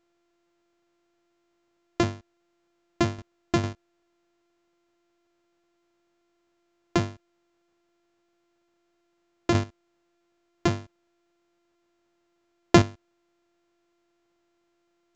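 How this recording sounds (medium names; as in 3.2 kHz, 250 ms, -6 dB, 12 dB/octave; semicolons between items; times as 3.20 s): a buzz of ramps at a fixed pitch in blocks of 128 samples; chopped level 2.2 Hz, depth 60%, duty 20%; A-law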